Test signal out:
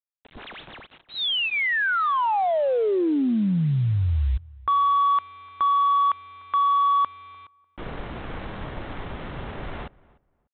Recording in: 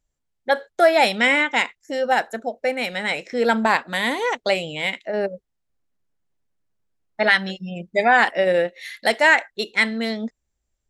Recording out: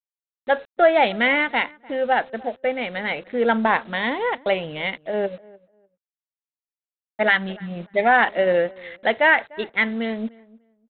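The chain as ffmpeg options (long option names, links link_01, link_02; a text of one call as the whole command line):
ffmpeg -i in.wav -filter_complex "[0:a]highshelf=frequency=2800:gain=-5,bandreject=frequency=2500:width=20,adynamicsmooth=sensitivity=8:basefreq=960,aresample=8000,acrusher=bits=7:mix=0:aa=0.000001,aresample=44100,asplit=2[link_01][link_02];[link_02]adelay=298,lowpass=frequency=1600:poles=1,volume=-22.5dB,asplit=2[link_03][link_04];[link_04]adelay=298,lowpass=frequency=1600:poles=1,volume=0.21[link_05];[link_01][link_03][link_05]amix=inputs=3:normalize=0" out.wav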